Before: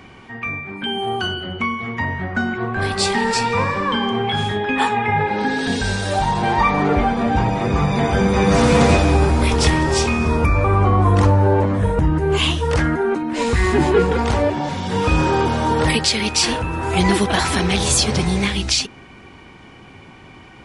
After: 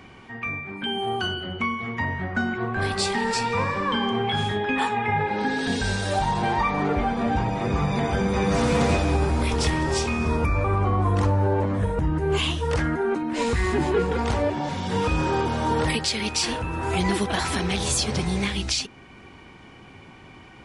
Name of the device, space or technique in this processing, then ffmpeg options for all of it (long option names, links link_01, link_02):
clipper into limiter: -af "asoftclip=type=hard:threshold=-6dB,alimiter=limit=-9.5dB:level=0:latency=1:release=480,volume=-4dB"